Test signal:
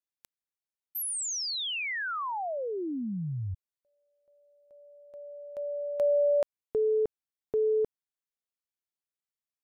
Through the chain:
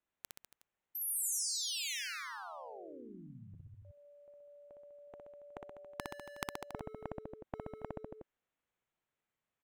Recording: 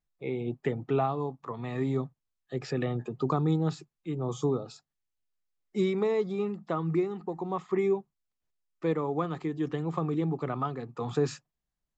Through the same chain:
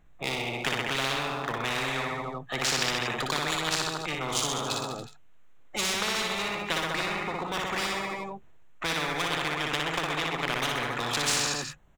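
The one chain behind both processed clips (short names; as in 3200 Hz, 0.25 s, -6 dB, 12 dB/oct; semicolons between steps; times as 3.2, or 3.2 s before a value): Wiener smoothing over 9 samples; reverse bouncing-ball echo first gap 60 ms, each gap 1.1×, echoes 5; spectral compressor 10:1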